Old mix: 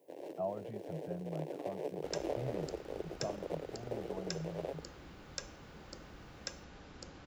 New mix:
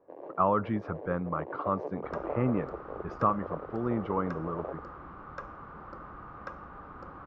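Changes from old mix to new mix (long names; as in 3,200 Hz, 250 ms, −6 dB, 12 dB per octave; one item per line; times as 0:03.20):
speech: remove pair of resonant band-passes 320 Hz, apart 2.1 octaves
second sound +3.5 dB
master: add low-pass with resonance 1,200 Hz, resonance Q 6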